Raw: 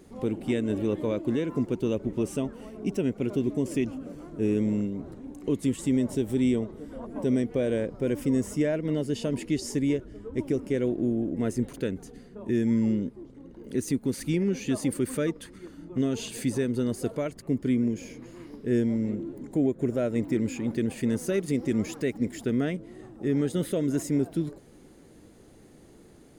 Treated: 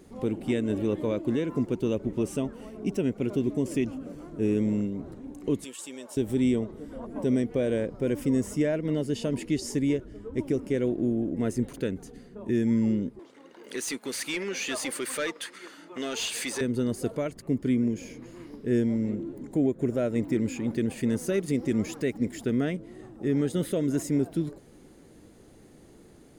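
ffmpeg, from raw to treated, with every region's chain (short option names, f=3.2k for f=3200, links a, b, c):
-filter_complex "[0:a]asettb=1/sr,asplit=3[a][b][c];[a]atrim=end=5.644[d];[b]atrim=start=5.64:end=6.17,asetpts=PTS-STARTPTS,afade=t=in:d=0.004:c=qsin,afade=t=out:st=0.526:d=0.004:c=qsin,highpass=800,bandreject=f=2k:w=5.3[e];[c]atrim=start=6.166[f];[d][e]acrossfade=d=0.004:c1=hsin:c2=qsin[g];[g][f]acrossfade=d=0.004:c1=qsin:c2=hsin,asettb=1/sr,asplit=3[h][i][j];[h]atrim=end=13.194[k];[i]atrim=start=13.19:end=16.61,asetpts=PTS-STARTPTS,afade=t=in:d=0.004:c=qsin,afade=t=out:st=3.416:d=0.004:c=qsin,highpass=f=1.2k:p=1,asplit=2[l][m];[m]highpass=f=720:p=1,volume=19dB,asoftclip=type=tanh:threshold=-19.5dB[n];[l][n]amix=inputs=2:normalize=0,lowpass=f=4.8k:p=1,volume=-6dB[o];[j]atrim=start=16.606[p];[k][o]acrossfade=d=0.004:c1=hsin:c2=qsin[q];[q][p]acrossfade=d=0.004:c1=qsin:c2=hsin"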